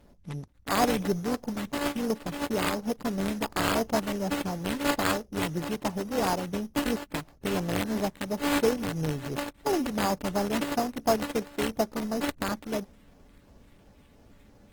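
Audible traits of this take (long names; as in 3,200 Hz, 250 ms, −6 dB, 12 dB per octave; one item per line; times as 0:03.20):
a buzz of ramps at a fixed pitch in blocks of 8 samples
phaser sweep stages 2, 2.9 Hz, lowest notch 760–2,600 Hz
aliases and images of a low sample rate 5,800 Hz, jitter 0%
Opus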